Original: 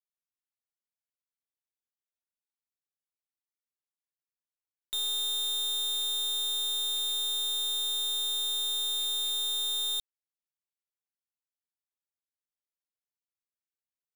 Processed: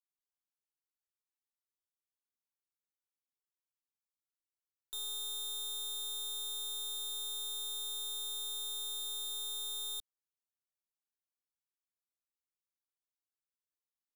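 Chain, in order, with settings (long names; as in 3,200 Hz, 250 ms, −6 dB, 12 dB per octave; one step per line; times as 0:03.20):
phaser with its sweep stopped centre 620 Hz, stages 6
level −5.5 dB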